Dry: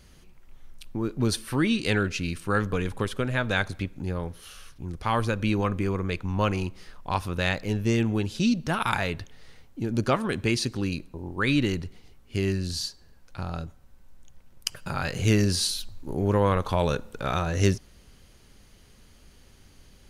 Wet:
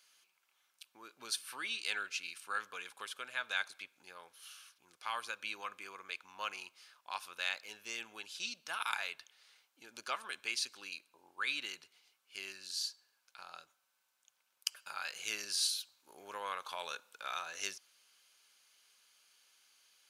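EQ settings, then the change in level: HPF 1400 Hz 12 dB/oct; notch 1900 Hz, Q 7.1; -6.0 dB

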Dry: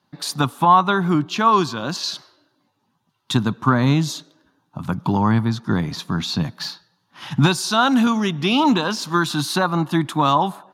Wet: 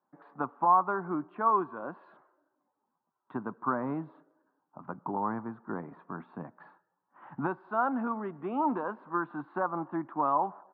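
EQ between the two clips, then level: HPF 380 Hz 12 dB/oct; LPF 1400 Hz 24 dB/oct; air absorption 340 m; -7.5 dB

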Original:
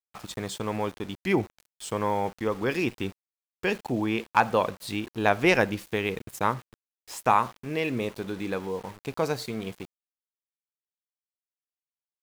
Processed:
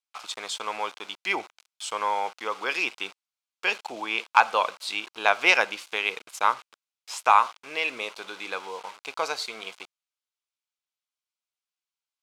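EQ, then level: HPF 1100 Hz 12 dB/oct; air absorption 60 m; bell 1800 Hz -10.5 dB 0.25 oct; +8.5 dB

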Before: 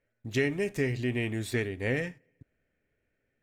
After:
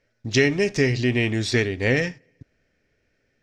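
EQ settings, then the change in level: synth low-pass 5400 Hz, resonance Q 3.7; +8.5 dB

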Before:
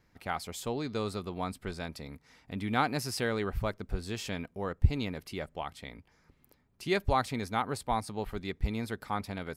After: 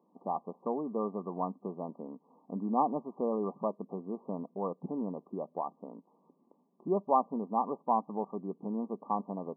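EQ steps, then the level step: brick-wall FIR band-pass 170–1200 Hz; dynamic EQ 350 Hz, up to -4 dB, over -42 dBFS, Q 1.1; +3.5 dB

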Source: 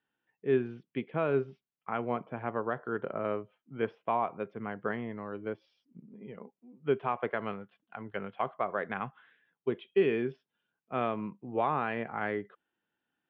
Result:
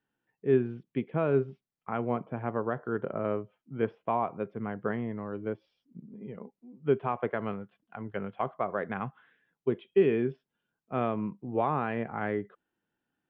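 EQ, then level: tilt -2 dB/oct; 0.0 dB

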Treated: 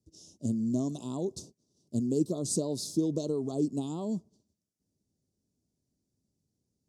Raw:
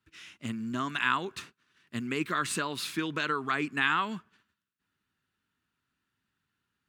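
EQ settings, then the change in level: elliptic band-stop 610–5400 Hz, stop band 80 dB; LPF 8800 Hz 12 dB/oct; +6.0 dB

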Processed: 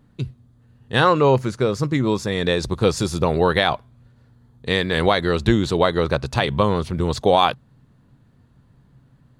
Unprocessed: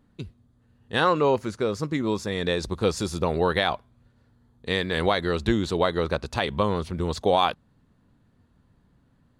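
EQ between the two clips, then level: bell 130 Hz +12 dB 0.23 oct; +5.0 dB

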